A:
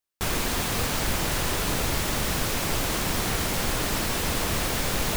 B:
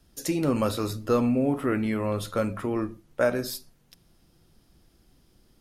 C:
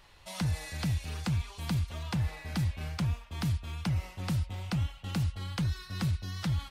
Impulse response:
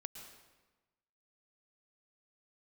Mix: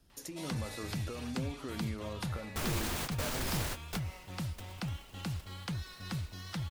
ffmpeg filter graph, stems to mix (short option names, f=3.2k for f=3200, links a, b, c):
-filter_complex "[0:a]alimiter=limit=-20dB:level=0:latency=1:release=14,adelay=2350,volume=-7.5dB,asplit=2[a][b];[b]volume=-21dB[c];[1:a]acompressor=threshold=-31dB:ratio=6,alimiter=level_in=2.5dB:limit=-24dB:level=0:latency=1:release=339,volume=-2.5dB,volume=-5.5dB,asplit=2[d][e];[2:a]lowshelf=f=150:g=-7.5,adelay=100,volume=-3.5dB[f];[e]apad=whole_len=331602[g];[a][g]sidechaingate=range=-33dB:threshold=-59dB:ratio=16:detection=peak[h];[3:a]atrim=start_sample=2205[i];[c][i]afir=irnorm=-1:irlink=0[j];[h][d][f][j]amix=inputs=4:normalize=0"